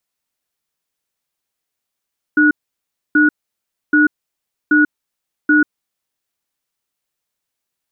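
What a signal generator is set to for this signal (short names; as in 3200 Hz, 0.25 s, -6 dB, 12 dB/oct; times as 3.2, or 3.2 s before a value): cadence 301 Hz, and 1460 Hz, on 0.14 s, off 0.64 s, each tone -11 dBFS 3.51 s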